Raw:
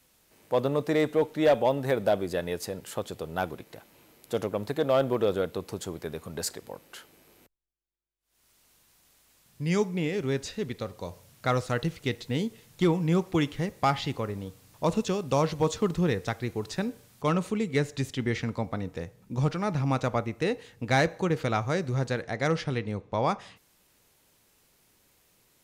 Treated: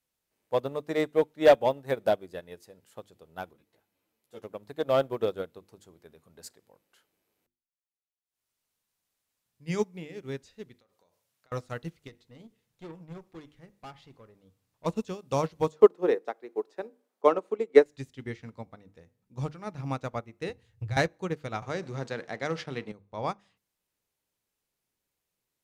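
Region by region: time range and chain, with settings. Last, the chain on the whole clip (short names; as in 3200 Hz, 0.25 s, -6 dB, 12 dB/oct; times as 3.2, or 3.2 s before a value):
3.53–4.44 doubler 18 ms -11 dB + ensemble effect
10.75–11.52 HPF 510 Hz 6 dB/oct + compressor 16:1, threshold -43 dBFS
12.07–14.86 tube stage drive 27 dB, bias 0.35 + high shelf 4800 Hz -4 dB
15.72–17.86 HPF 370 Hz 24 dB/oct + tilt shelf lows +10 dB, about 1400 Hz
20.49–20.97 resonant low shelf 150 Hz +13.5 dB, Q 3 + compressor 8:1, threshold -23 dBFS
21.62–22.92 G.711 law mismatch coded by A + BPF 160–7300 Hz + fast leveller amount 70%
whole clip: notches 50/100/150/200/250/300/350 Hz; upward expander 2.5:1, over -34 dBFS; gain +7 dB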